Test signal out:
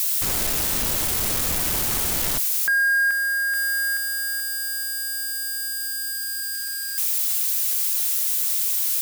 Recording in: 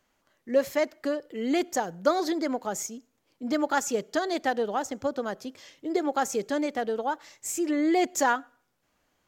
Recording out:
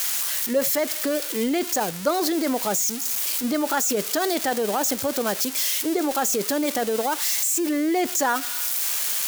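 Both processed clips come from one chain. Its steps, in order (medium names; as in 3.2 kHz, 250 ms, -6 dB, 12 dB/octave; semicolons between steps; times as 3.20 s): zero-crossing glitches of -23 dBFS; in parallel at -1 dB: compressor with a negative ratio -29 dBFS, ratio -0.5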